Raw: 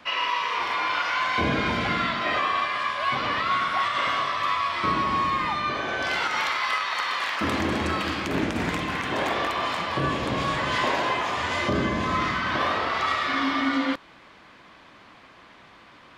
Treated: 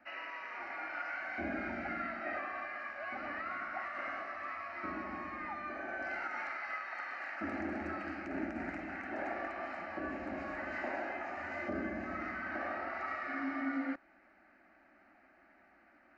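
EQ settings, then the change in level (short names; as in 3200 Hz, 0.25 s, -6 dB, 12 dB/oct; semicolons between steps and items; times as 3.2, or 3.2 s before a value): tape spacing loss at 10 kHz 30 dB; low shelf 250 Hz -8.5 dB; fixed phaser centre 690 Hz, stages 8; -6.0 dB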